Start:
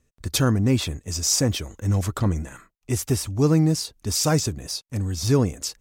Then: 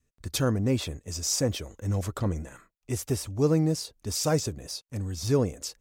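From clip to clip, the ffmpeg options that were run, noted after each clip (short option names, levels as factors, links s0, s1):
-af "adynamicequalizer=threshold=0.0141:dfrequency=520:dqfactor=1.9:tfrequency=520:tqfactor=1.9:attack=5:release=100:ratio=0.375:range=3.5:mode=boostabove:tftype=bell,volume=0.473"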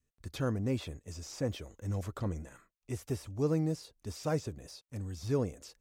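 -filter_complex "[0:a]acrossover=split=3300[s0][s1];[s1]acompressor=threshold=0.00794:ratio=4:attack=1:release=60[s2];[s0][s2]amix=inputs=2:normalize=0,volume=0.447"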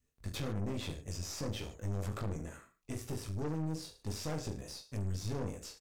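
-af "alimiter=level_in=2.37:limit=0.0631:level=0:latency=1:release=99,volume=0.422,aecho=1:1:20|44|72.8|107.4|148.8:0.631|0.398|0.251|0.158|0.1,aeval=exprs='(tanh(79.4*val(0)+0.7)-tanh(0.7))/79.4':c=same,volume=1.78"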